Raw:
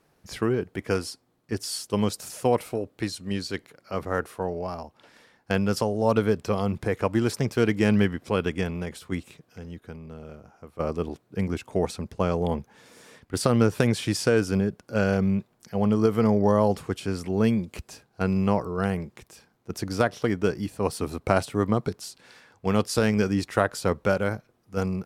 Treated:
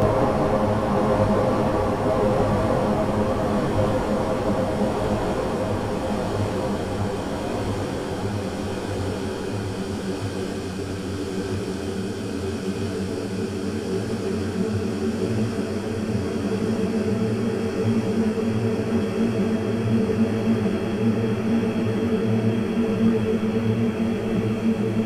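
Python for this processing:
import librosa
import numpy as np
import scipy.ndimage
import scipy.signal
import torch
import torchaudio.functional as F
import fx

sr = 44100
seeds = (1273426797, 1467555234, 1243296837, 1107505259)

y = fx.dmg_wind(x, sr, seeds[0], corner_hz=610.0, level_db=-32.0)
y = fx.paulstretch(y, sr, seeds[1], factor=27.0, window_s=1.0, from_s=16.67)
y = fx.detune_double(y, sr, cents=27)
y = y * librosa.db_to_amplitude(5.0)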